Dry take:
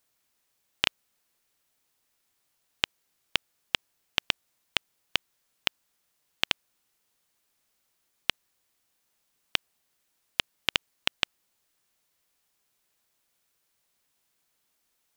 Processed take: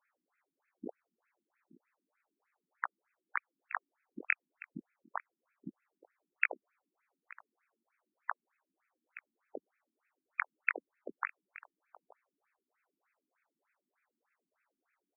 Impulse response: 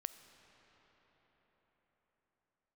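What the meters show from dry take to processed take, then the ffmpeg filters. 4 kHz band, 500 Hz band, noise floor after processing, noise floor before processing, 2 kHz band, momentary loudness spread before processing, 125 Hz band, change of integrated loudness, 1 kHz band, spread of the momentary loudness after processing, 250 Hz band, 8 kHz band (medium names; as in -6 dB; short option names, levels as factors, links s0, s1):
under -40 dB, -5.5 dB, under -85 dBFS, -76 dBFS, -4.0 dB, 3 LU, -12.5 dB, -8.5 dB, -2.0 dB, 20 LU, -3.0 dB, under -35 dB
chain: -filter_complex "[0:a]acrossover=split=330|3000[s0][s1][s2];[s1]acompressor=threshold=0.0251:ratio=2[s3];[s0][s3][s2]amix=inputs=3:normalize=0,flanger=delay=15.5:depth=7.4:speed=0.34,asplit=2[s4][s5];[s5]aecho=0:1:873:0.112[s6];[s4][s6]amix=inputs=2:normalize=0,afftfilt=real='re*between(b*sr/1024,240*pow(1900/240,0.5+0.5*sin(2*PI*3.3*pts/sr))/1.41,240*pow(1900/240,0.5+0.5*sin(2*PI*3.3*pts/sr))*1.41)':imag='im*between(b*sr/1024,240*pow(1900/240,0.5+0.5*sin(2*PI*3.3*pts/sr))/1.41,240*pow(1900/240,0.5+0.5*sin(2*PI*3.3*pts/sr))*1.41)':win_size=1024:overlap=0.75,volume=2.99"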